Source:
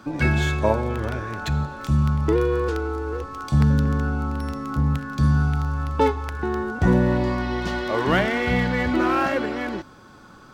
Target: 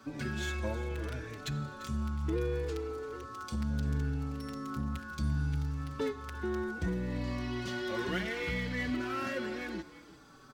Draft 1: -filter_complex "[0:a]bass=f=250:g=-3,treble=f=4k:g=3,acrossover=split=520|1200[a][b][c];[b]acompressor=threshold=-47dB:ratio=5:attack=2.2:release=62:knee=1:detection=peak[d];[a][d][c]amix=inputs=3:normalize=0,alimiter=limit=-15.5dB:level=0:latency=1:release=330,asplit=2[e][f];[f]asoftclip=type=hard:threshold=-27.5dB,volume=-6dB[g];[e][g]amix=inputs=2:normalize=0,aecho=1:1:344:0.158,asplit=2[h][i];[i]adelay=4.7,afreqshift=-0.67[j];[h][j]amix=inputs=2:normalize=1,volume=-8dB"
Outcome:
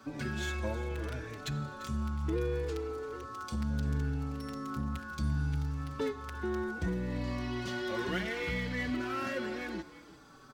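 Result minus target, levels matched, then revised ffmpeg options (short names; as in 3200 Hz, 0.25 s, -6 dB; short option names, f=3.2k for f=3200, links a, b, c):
compressor: peak gain reduction -6.5 dB
-filter_complex "[0:a]bass=f=250:g=-3,treble=f=4k:g=3,acrossover=split=520|1200[a][b][c];[b]acompressor=threshold=-55dB:ratio=5:attack=2.2:release=62:knee=1:detection=peak[d];[a][d][c]amix=inputs=3:normalize=0,alimiter=limit=-15.5dB:level=0:latency=1:release=330,asplit=2[e][f];[f]asoftclip=type=hard:threshold=-27.5dB,volume=-6dB[g];[e][g]amix=inputs=2:normalize=0,aecho=1:1:344:0.158,asplit=2[h][i];[i]adelay=4.7,afreqshift=-0.67[j];[h][j]amix=inputs=2:normalize=1,volume=-8dB"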